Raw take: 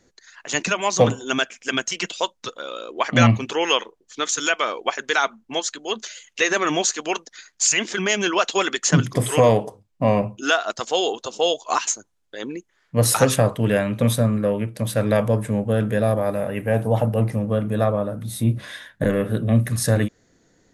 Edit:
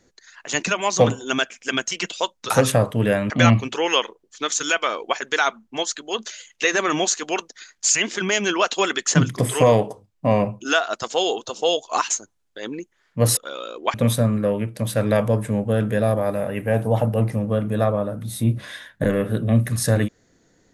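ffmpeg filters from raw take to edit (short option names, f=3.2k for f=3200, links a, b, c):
-filter_complex "[0:a]asplit=5[a][b][c][d][e];[a]atrim=end=2.502[f];[b]atrim=start=13.138:end=13.942[g];[c]atrim=start=3.068:end=13.142[h];[d]atrim=start=2.498:end=3.072[i];[e]atrim=start=13.938[j];[f][g]acrossfade=d=0.004:c1=hsin:c2=hsin[k];[k][h]acrossfade=d=0.004:c1=hsin:c2=hsin[l];[l][i]acrossfade=d=0.004:c1=hsin:c2=hsin[m];[m][j]acrossfade=d=0.004:c1=hsin:c2=hsin"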